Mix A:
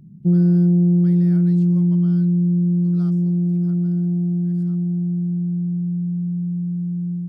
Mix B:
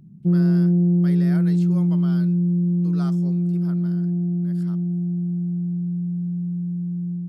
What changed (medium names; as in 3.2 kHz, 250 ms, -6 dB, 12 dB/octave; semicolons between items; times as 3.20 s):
speech +10.0 dB; background: add bass shelf 350 Hz -3 dB